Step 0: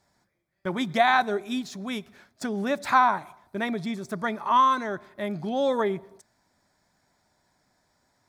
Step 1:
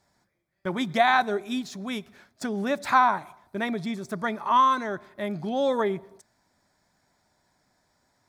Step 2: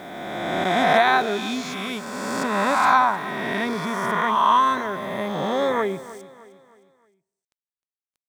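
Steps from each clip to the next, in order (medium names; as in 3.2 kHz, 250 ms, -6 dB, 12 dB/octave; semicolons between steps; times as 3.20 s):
no audible change
reverse spectral sustain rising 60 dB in 2.19 s; bit crusher 9-bit; feedback delay 309 ms, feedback 42%, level -17 dB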